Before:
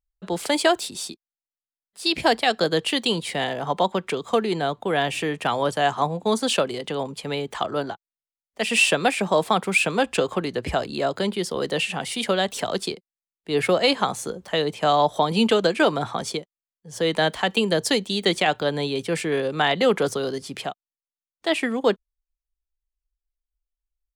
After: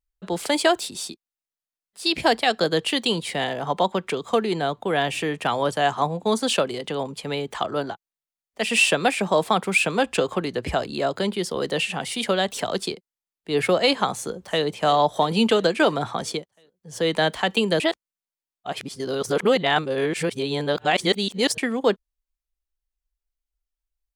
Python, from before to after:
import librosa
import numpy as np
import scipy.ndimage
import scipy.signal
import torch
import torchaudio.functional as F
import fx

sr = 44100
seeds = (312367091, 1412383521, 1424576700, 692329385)

y = fx.echo_throw(x, sr, start_s=14.13, length_s=0.52, ms=340, feedback_pct=65, wet_db=-17.0)
y = fx.edit(y, sr, fx.reverse_span(start_s=17.8, length_s=3.78), tone=tone)